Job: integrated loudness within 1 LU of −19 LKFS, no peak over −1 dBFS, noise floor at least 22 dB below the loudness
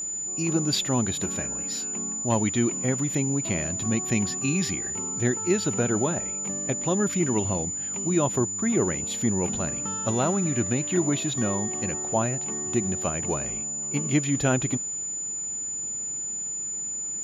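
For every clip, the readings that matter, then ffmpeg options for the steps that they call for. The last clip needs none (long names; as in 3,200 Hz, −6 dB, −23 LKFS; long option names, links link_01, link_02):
interfering tone 7,000 Hz; level of the tone −29 dBFS; integrated loudness −25.5 LKFS; sample peak −10.5 dBFS; target loudness −19.0 LKFS
→ -af "bandreject=frequency=7000:width=30"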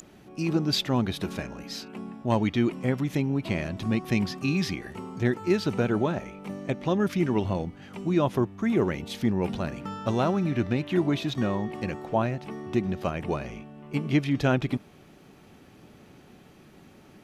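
interfering tone none found; integrated loudness −28.0 LKFS; sample peak −11.5 dBFS; target loudness −19.0 LKFS
→ -af "volume=9dB"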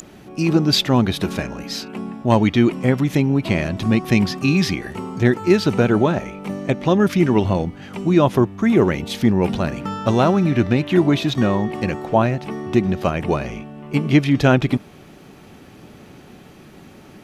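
integrated loudness −19.0 LKFS; sample peak −2.5 dBFS; background noise floor −44 dBFS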